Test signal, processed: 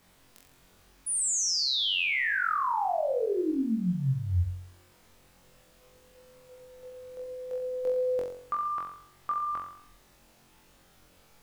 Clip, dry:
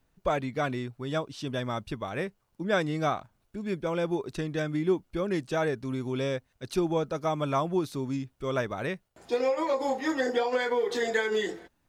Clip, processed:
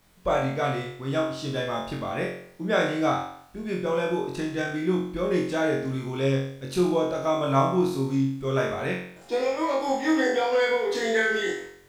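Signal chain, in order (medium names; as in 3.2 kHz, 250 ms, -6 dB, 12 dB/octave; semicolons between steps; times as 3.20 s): added noise pink -64 dBFS; flutter echo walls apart 3.8 m, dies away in 0.63 s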